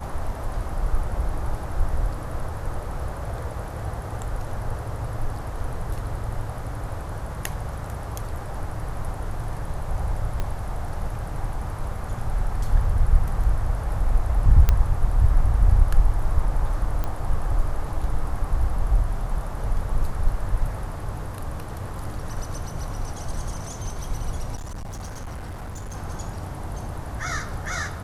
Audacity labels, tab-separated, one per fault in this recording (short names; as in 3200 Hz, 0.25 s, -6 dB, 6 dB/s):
10.400000	10.400000	pop -15 dBFS
14.690000	14.690000	pop -6 dBFS
17.040000	17.040000	pop -15 dBFS
24.550000	25.970000	clipped -30.5 dBFS